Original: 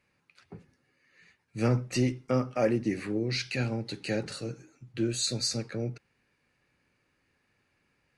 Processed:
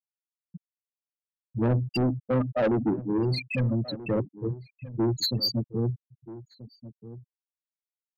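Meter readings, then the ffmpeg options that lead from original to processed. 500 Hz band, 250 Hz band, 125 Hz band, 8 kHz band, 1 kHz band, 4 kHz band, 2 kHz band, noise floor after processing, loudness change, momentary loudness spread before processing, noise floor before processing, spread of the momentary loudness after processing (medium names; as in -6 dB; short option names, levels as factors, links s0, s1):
+2.5 dB, +3.5 dB, +4.5 dB, -9.0 dB, +3.0 dB, +3.0 dB, -1.0 dB, under -85 dBFS, +3.0 dB, 12 LU, -74 dBFS, 20 LU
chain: -filter_complex "[0:a]aeval=exprs='val(0)+0.5*0.0126*sgn(val(0))':c=same,bandreject=f=50:t=h:w=6,bandreject=f=100:t=h:w=6,bandreject=f=150:t=h:w=6,afftfilt=real='re*gte(hypot(re,im),0.126)':imag='im*gte(hypot(re,im),0.126)':win_size=1024:overlap=0.75,lowpass=7500,highshelf=f=3000:g=3,asoftclip=type=tanh:threshold=0.0422,asplit=2[s0][s1];[s1]adelay=1283,volume=0.158,highshelf=f=4000:g=-28.9[s2];[s0][s2]amix=inputs=2:normalize=0,volume=2.37"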